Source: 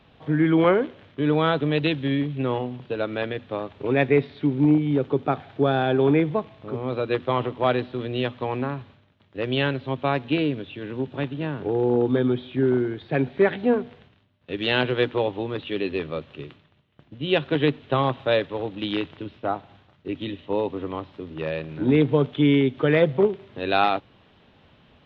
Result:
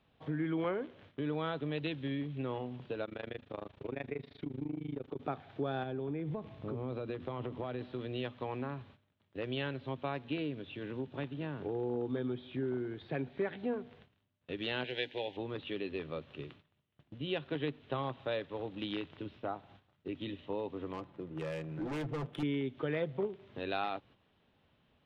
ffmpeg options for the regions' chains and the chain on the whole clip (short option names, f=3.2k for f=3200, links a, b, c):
-filter_complex "[0:a]asettb=1/sr,asplit=3[a][b][c];[a]atrim=end=3.054[d];[b]atrim=start=3.05:end=5.2,asetpts=PTS-STARTPTS,afade=t=in:d=0.004:c=qsin,afade=t=out:st=2.146:d=0.004:c=qsin,tremolo=f=26:d=0.947,acompressor=threshold=-27dB:ratio=2:attack=3.2:release=140:knee=1:detection=peak[e];[c]atrim=start=5.196[f];[d][e]acrossfade=d=0.004:c1=hsin:c2=qsin[g];[g][f]acrossfade=d=0.004:c1=qsin:c2=hsin,asettb=1/sr,asplit=3[h][i][j];[h]atrim=end=5.834[k];[i]atrim=start=5.83:end=7.81,asetpts=PTS-STARTPTS,afade=t=in:d=0.004:c=qsin,afade=t=out:st=1.976:d=0.004:c=qsin,acompressor=threshold=-28dB:ratio=5:attack=3.2:release=140:knee=1:detection=peak,lowshelf=f=430:g=8[l];[j]atrim=start=7.806[m];[k][l]acrossfade=d=0.004:c1=hsin:c2=qsin[n];[n][m]acrossfade=d=0.004:c1=qsin:c2=hsin,asettb=1/sr,asplit=3[o][p][q];[o]atrim=end=14.844[r];[p]atrim=start=14.84:end=15.37,asetpts=PTS-STARTPTS,afade=t=in:d=0.004:c=qsin,afade=t=out:st=0.526:d=0.004:c=qsin,asuperstop=centerf=1200:order=4:qfactor=1.3,tiltshelf=f=650:g=-8.5[s];[q]atrim=start=15.366[t];[r][s]acrossfade=d=0.004:c1=hsin:c2=qsin[u];[u][t]acrossfade=d=0.004:c1=qsin:c2=hsin,asettb=1/sr,asplit=3[v][w][x];[v]atrim=end=20.934[y];[w]atrim=start=20.93:end=22.43,asetpts=PTS-STARTPTS,afade=t=in:d=0.004:c=qsin,afade=t=out:st=1.496:d=0.004:c=qsin,volume=24dB,asoftclip=hard,volume=-24dB,aecho=1:1:5.9:0.45,atrim=end_sample=66150,adynamicsmooth=sensitivity=5:basefreq=1.7k[z];[x]atrim=start=22.426[aa];[y][z]acrossfade=d=0.004:c1=hsin:c2=qsin[ab];[ab][aa]acrossfade=d=0.004:c1=qsin:c2=hsin,acompressor=threshold=-32dB:ratio=2,agate=range=-9dB:threshold=-51dB:ratio=16:detection=peak,volume=-6.5dB"